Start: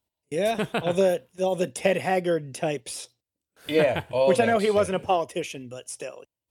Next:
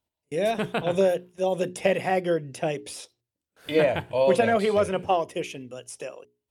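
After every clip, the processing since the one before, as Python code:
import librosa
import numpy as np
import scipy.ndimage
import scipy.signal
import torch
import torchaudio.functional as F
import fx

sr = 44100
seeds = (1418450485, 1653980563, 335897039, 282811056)

y = fx.high_shelf(x, sr, hz=4800.0, db=-5.0)
y = fx.hum_notches(y, sr, base_hz=60, count=7)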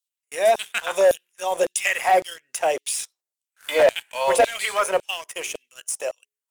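y = fx.filter_lfo_highpass(x, sr, shape='saw_down', hz=1.8, low_hz=540.0, high_hz=4200.0, q=1.9)
y = fx.leveller(y, sr, passes=2)
y = fx.high_shelf_res(y, sr, hz=5700.0, db=6.5, q=1.5)
y = y * 10.0 ** (-1.0 / 20.0)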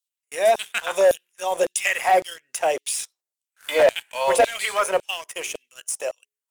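y = x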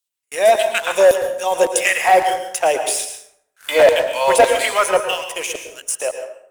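y = fx.rev_plate(x, sr, seeds[0], rt60_s=0.72, hf_ratio=0.6, predelay_ms=100, drr_db=6.5)
y = y * 10.0 ** (5.0 / 20.0)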